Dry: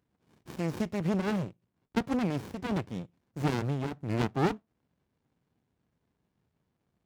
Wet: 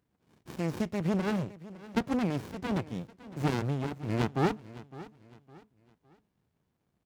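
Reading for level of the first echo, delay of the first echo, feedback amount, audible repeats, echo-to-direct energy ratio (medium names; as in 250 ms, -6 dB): -17.5 dB, 559 ms, 35%, 2, -17.0 dB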